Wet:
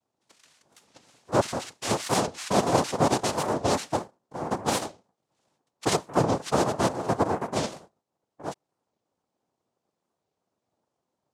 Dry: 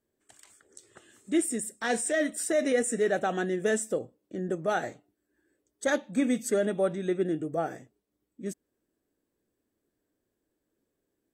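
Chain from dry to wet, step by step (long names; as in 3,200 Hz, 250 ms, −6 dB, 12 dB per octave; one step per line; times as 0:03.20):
dynamic equaliser 430 Hz, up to +3 dB, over −34 dBFS, Q 0.86
cochlear-implant simulation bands 2
wow of a warped record 45 rpm, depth 250 cents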